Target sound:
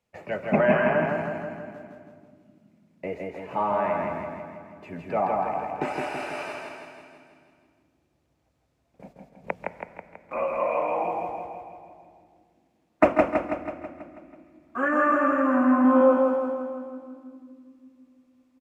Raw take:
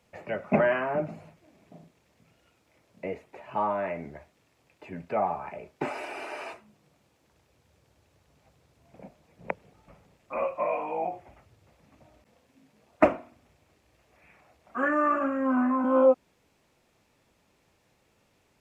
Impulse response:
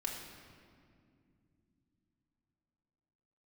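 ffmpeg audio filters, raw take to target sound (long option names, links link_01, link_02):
-filter_complex "[0:a]agate=range=-14dB:threshold=-49dB:ratio=16:detection=peak,aecho=1:1:163|326|489|652|815|978|1141|1304:0.708|0.404|0.23|0.131|0.0747|0.0426|0.0243|0.0138,asplit=2[link_01][link_02];[1:a]atrim=start_sample=2205,adelay=139[link_03];[link_02][link_03]afir=irnorm=-1:irlink=0,volume=-12dB[link_04];[link_01][link_04]amix=inputs=2:normalize=0,volume=1.5dB"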